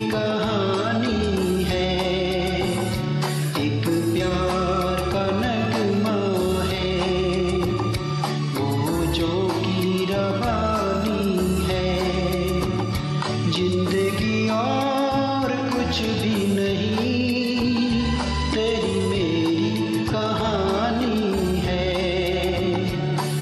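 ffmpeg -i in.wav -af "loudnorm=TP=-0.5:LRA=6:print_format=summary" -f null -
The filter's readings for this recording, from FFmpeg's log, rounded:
Input Integrated:    -22.5 LUFS
Input True Peak:     -12.1 dBTP
Input LRA:             0.7 LU
Input Threshold:     -32.5 LUFS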